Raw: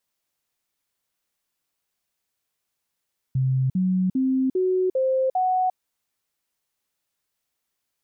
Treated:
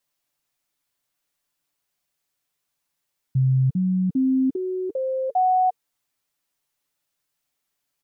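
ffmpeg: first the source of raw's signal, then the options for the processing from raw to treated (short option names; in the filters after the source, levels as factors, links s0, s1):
-f lavfi -i "aevalsrc='0.119*clip(min(mod(t,0.4),0.35-mod(t,0.4))/0.005,0,1)*sin(2*PI*131*pow(2,floor(t/0.4)/2)*mod(t,0.4))':d=2.4:s=44100"
-af "bandreject=f=460:w=12,aecho=1:1:6.9:0.49"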